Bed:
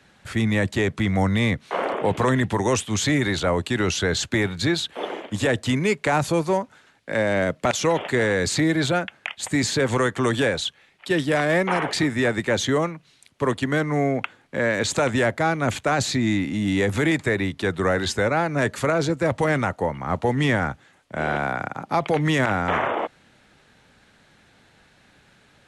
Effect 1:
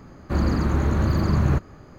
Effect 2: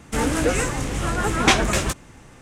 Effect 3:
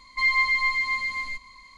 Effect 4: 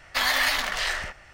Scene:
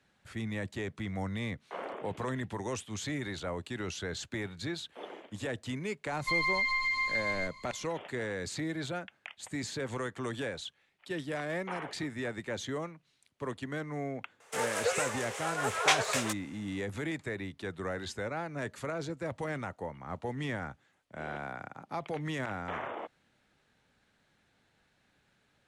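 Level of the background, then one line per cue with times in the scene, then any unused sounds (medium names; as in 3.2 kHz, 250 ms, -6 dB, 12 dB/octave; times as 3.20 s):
bed -15 dB
6.10 s: add 3 -3.5 dB + compression, threshold -23 dBFS
14.40 s: add 2 -8 dB + brick-wall FIR high-pass 390 Hz
not used: 1, 4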